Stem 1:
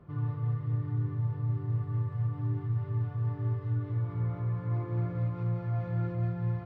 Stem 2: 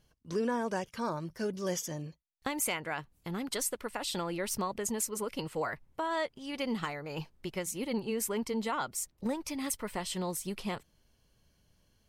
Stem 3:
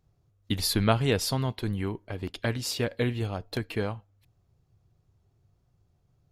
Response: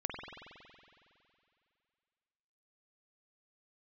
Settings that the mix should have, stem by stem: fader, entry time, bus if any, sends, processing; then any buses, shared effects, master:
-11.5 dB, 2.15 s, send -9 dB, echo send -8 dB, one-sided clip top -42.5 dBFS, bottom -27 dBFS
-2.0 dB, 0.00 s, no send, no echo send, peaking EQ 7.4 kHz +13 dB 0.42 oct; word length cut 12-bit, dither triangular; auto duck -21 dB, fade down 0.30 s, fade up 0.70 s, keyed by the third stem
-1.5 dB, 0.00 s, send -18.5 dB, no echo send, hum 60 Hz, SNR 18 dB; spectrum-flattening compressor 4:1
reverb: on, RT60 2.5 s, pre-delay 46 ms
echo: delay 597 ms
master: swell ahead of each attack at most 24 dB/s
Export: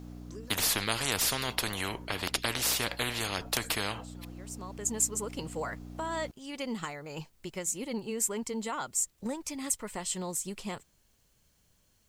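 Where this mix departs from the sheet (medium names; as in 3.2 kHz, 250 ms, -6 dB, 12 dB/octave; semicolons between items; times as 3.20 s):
stem 1: muted; reverb: off; master: missing swell ahead of each attack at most 24 dB/s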